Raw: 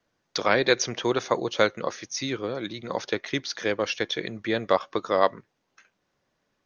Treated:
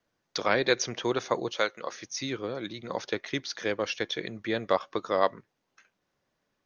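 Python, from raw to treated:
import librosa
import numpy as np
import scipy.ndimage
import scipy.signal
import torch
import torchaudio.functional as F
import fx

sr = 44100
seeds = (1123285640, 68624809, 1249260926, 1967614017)

y = fx.highpass(x, sr, hz=640.0, slope=6, at=(1.52, 1.92))
y = y * librosa.db_to_amplitude(-3.5)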